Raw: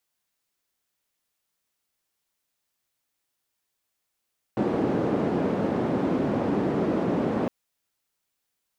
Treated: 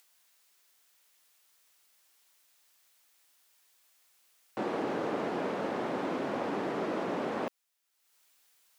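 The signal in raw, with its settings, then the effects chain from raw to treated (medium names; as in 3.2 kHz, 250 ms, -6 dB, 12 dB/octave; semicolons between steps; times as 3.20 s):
noise band 220–320 Hz, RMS -25 dBFS 2.91 s
high-pass 890 Hz 6 dB/octave; upward compressor, threshold -55 dBFS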